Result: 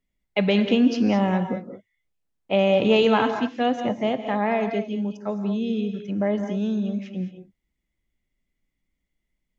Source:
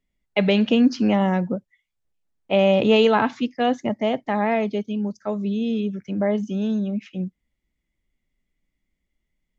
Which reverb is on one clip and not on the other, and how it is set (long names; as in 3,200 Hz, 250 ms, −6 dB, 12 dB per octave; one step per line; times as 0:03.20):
reverb whose tail is shaped and stops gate 240 ms rising, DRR 7.5 dB
level −2 dB